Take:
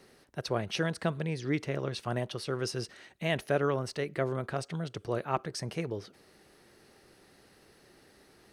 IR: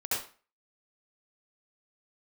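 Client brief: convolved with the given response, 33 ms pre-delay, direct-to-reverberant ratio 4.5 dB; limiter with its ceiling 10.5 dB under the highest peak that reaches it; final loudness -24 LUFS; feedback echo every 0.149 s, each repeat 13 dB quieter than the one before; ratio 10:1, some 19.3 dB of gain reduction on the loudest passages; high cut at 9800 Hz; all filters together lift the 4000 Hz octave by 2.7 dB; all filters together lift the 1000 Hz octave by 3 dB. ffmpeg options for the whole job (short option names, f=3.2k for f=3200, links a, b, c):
-filter_complex "[0:a]lowpass=9.8k,equalizer=f=1k:t=o:g=4,equalizer=f=4k:t=o:g=3.5,acompressor=threshold=-41dB:ratio=10,alimiter=level_in=13dB:limit=-24dB:level=0:latency=1,volume=-13dB,aecho=1:1:149|298|447:0.224|0.0493|0.0108,asplit=2[a][b];[1:a]atrim=start_sample=2205,adelay=33[c];[b][c]afir=irnorm=-1:irlink=0,volume=-11.5dB[d];[a][d]amix=inputs=2:normalize=0,volume=25dB"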